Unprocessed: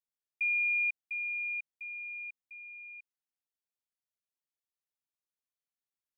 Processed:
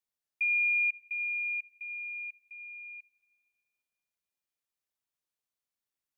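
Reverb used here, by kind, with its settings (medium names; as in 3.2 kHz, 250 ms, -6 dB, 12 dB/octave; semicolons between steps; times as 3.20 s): plate-style reverb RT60 2 s, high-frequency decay 1×, DRR 17.5 dB; trim +2 dB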